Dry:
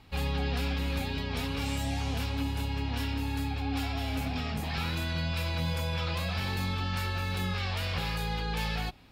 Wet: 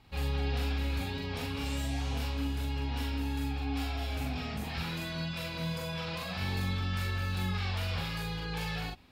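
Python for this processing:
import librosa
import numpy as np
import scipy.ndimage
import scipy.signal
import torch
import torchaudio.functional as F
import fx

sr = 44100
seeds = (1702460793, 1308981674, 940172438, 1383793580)

y = fx.doubler(x, sr, ms=43.0, db=-2)
y = y * 10.0 ** (-5.0 / 20.0)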